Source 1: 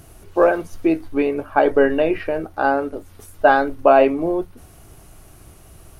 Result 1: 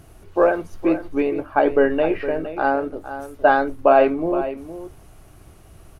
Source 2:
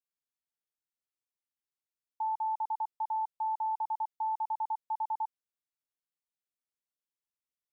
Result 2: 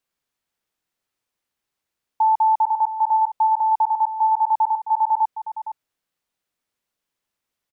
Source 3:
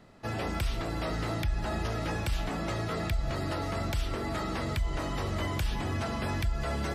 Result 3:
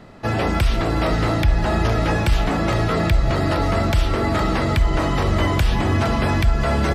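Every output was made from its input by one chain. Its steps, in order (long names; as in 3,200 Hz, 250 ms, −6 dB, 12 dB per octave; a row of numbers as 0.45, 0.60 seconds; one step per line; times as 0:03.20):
high-shelf EQ 4,800 Hz −7 dB
on a send: single-tap delay 463 ms −12 dB
on the sum: loudness normalisation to −20 LKFS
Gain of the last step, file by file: −1.5, +15.5, +13.0 decibels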